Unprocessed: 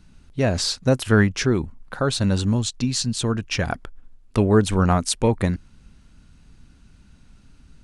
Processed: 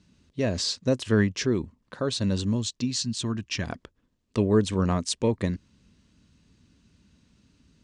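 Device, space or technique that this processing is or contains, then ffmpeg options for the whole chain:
car door speaker: -filter_complex "[0:a]highpass=95,equalizer=f=140:t=q:w=4:g=-5,equalizer=f=780:t=q:w=4:g=-10,equalizer=f=1400:t=q:w=4:g=-9,equalizer=f=2300:t=q:w=4:g=-3,lowpass=f=7900:w=0.5412,lowpass=f=7900:w=1.3066,asettb=1/sr,asplit=3[s0][s1][s2];[s0]atrim=end=2.914[s3];[s1]atrim=start=2.91:end=3.63,asetpts=PTS-STARTPTS,afade=t=in:d=0.004:c=qsin,afade=t=out:st=0.716:d=0.004:c=qsin,equalizer=f=490:t=o:w=0.34:g=-14.5[s4];[s2]atrim=start=3.626[s5];[s3][s4]acrossfade=d=0.004:c1=hsin:c2=qsin[s6];[s6][s5]acrossfade=d=0.004:c1=qsin:c2=hsin,volume=0.668"

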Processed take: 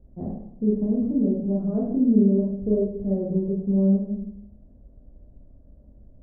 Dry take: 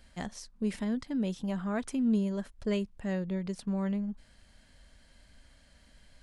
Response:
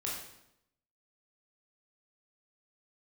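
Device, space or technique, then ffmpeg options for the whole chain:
next room: -filter_complex "[0:a]lowpass=f=540:w=0.5412,lowpass=f=540:w=1.3066[s0];[1:a]atrim=start_sample=2205[s1];[s0][s1]afir=irnorm=-1:irlink=0,volume=2.51"

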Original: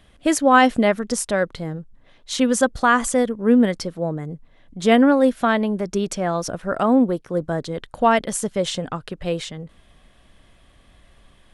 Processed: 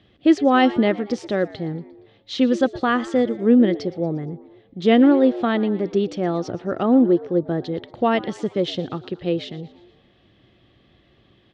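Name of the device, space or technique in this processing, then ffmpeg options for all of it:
frequency-shifting delay pedal into a guitar cabinet: -filter_complex "[0:a]asplit=5[s0][s1][s2][s3][s4];[s1]adelay=117,afreqshift=95,volume=0.112[s5];[s2]adelay=234,afreqshift=190,volume=0.0596[s6];[s3]adelay=351,afreqshift=285,volume=0.0316[s7];[s4]adelay=468,afreqshift=380,volume=0.0168[s8];[s0][s5][s6][s7][s8]amix=inputs=5:normalize=0,highpass=98,equalizer=f=110:t=q:w=4:g=6,equalizer=f=350:t=q:w=4:g=8,equalizer=f=630:t=q:w=4:g=-4,equalizer=f=1000:t=q:w=4:g=-9,equalizer=f=1500:t=q:w=4:g=-7,equalizer=f=2300:t=q:w=4:g=-4,lowpass=f=4300:w=0.5412,lowpass=f=4300:w=1.3066"

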